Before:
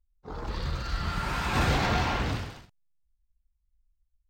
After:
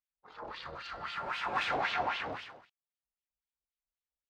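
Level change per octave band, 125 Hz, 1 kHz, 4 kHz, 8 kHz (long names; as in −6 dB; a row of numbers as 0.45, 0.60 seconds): −23.5, −3.5, −5.5, −15.5 decibels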